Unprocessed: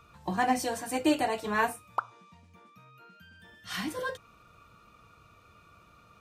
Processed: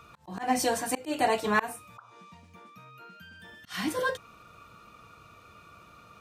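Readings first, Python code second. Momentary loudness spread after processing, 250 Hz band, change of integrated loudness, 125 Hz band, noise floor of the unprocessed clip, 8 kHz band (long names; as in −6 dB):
22 LU, −1.5 dB, +1.5 dB, −0.5 dB, −59 dBFS, +4.0 dB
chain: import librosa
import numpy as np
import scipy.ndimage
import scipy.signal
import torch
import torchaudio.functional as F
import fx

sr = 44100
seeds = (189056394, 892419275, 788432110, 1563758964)

y = fx.auto_swell(x, sr, attack_ms=224.0)
y = fx.low_shelf(y, sr, hz=89.0, db=-7.5)
y = y * 10.0 ** (5.5 / 20.0)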